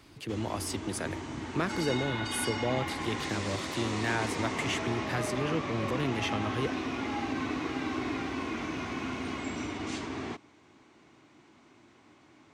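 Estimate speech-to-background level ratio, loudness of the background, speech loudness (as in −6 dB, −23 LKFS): 1.0 dB, −35.0 LKFS, −34.0 LKFS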